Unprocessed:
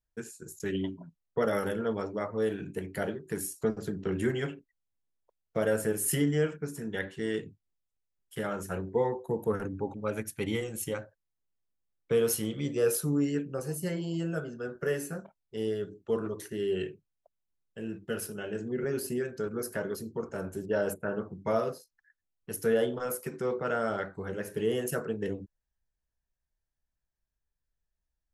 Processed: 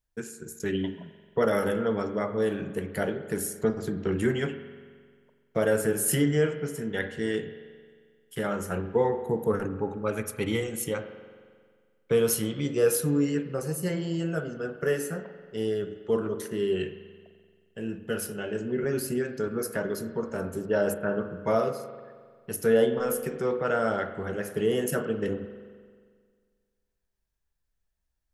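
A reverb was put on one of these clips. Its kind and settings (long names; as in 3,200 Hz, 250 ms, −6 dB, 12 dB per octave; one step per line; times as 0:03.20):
spring reverb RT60 1.8 s, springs 44 ms, chirp 25 ms, DRR 10 dB
level +3.5 dB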